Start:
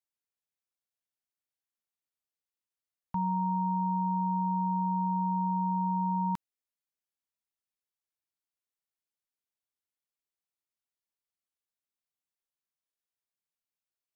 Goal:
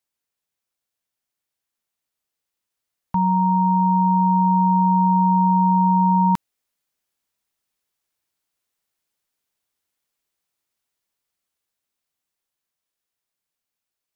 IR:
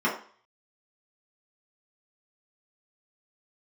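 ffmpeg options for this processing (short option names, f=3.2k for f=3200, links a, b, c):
-af "dynaudnorm=f=570:g=11:m=4.5dB,volume=8.5dB"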